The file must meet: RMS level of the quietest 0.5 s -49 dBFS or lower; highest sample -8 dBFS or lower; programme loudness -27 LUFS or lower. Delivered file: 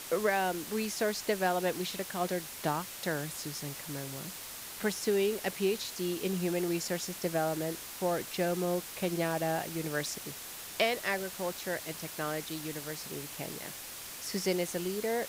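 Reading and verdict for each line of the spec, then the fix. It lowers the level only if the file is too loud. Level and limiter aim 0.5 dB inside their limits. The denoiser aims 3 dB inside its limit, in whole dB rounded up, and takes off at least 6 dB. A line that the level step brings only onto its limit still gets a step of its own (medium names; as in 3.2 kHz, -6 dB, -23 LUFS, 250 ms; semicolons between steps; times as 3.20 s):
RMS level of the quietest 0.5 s -44 dBFS: fail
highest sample -15.0 dBFS: pass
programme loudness -33.5 LUFS: pass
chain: noise reduction 8 dB, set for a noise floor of -44 dBFS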